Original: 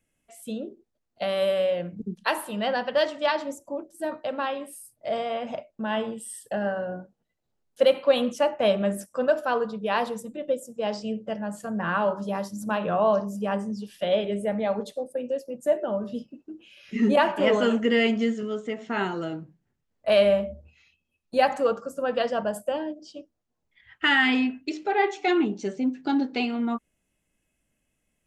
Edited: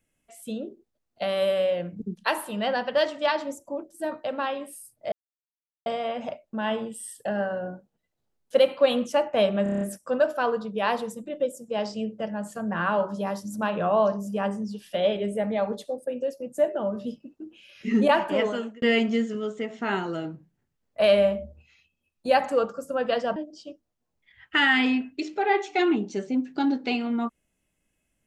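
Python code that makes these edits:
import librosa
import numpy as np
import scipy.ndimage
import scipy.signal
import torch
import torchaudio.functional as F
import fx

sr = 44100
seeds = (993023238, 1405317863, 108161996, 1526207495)

y = fx.edit(x, sr, fx.insert_silence(at_s=5.12, length_s=0.74),
    fx.stutter(start_s=8.89, slice_s=0.03, count=7),
    fx.fade_out_span(start_s=17.3, length_s=0.6),
    fx.cut(start_s=22.44, length_s=0.41), tone=tone)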